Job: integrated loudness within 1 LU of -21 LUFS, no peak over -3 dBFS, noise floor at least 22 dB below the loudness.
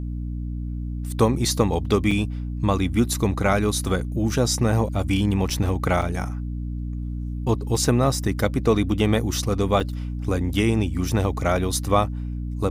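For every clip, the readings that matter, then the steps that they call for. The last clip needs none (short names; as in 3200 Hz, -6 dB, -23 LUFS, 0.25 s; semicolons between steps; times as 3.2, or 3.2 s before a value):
dropouts 5; longest dropout 4.6 ms; hum 60 Hz; harmonics up to 300 Hz; hum level -26 dBFS; loudness -23.5 LUFS; peak -6.0 dBFS; loudness target -21.0 LUFS
-> interpolate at 2.11/5.5/6.02/8.75/9.8, 4.6 ms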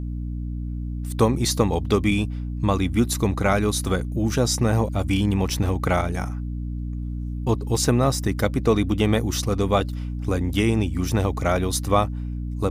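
dropouts 0; hum 60 Hz; harmonics up to 300 Hz; hum level -26 dBFS
-> de-hum 60 Hz, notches 5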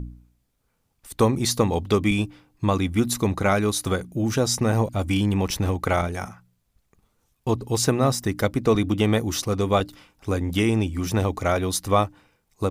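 hum none; loudness -23.5 LUFS; peak -6.5 dBFS; loudness target -21.0 LUFS
-> gain +2.5 dB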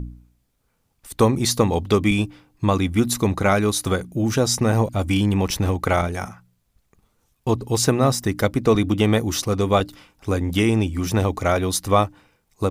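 loudness -21.0 LUFS; peak -4.0 dBFS; noise floor -69 dBFS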